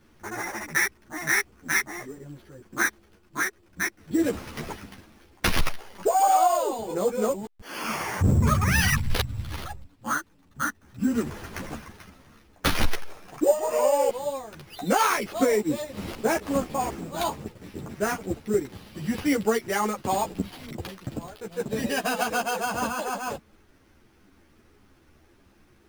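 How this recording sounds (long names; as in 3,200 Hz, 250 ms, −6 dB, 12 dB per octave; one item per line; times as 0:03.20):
aliases and images of a low sample rate 7,700 Hz, jitter 0%
a shimmering, thickened sound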